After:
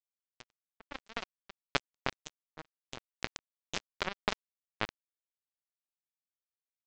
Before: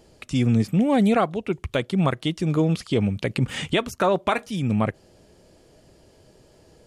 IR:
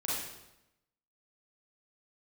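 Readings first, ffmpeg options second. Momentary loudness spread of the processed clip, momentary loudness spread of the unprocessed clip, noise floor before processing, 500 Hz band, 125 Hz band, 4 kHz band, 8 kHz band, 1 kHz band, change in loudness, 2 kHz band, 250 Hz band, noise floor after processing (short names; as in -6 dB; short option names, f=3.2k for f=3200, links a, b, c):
17 LU, 7 LU, -56 dBFS, -21.0 dB, -28.5 dB, -8.5 dB, -8.5 dB, -15.0 dB, -16.5 dB, -9.0 dB, -28.0 dB, under -85 dBFS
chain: -af "lowshelf=f=310:g=-11,flanger=delay=3.1:depth=5:regen=-65:speed=1.9:shape=triangular,lowpass=f=1.9k:p=1,acompressor=threshold=-38dB:ratio=2,aresample=16000,acrusher=bits=3:mix=0:aa=0.5,aresample=44100,volume=13dB"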